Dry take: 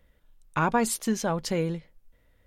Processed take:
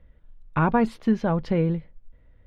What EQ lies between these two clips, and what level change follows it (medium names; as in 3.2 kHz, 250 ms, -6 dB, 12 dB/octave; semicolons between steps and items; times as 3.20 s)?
distance through air 360 m; bass shelf 200 Hz +8 dB; +2.5 dB